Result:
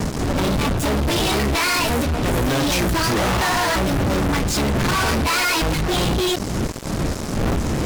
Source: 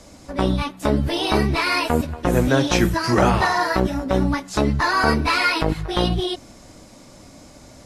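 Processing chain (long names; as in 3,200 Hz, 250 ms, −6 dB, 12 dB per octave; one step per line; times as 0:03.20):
wind on the microphone 220 Hz −23 dBFS
fuzz pedal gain 40 dB, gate −38 dBFS
level −5 dB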